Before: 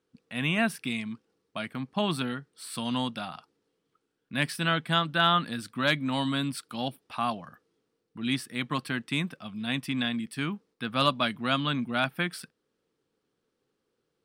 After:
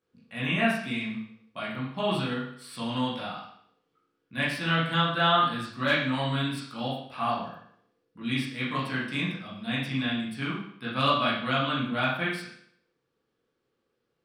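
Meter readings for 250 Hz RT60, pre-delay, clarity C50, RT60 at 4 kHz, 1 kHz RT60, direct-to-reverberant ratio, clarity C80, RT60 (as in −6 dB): 0.65 s, 14 ms, 2.5 dB, 0.60 s, 0.65 s, −9.0 dB, 6.5 dB, 0.65 s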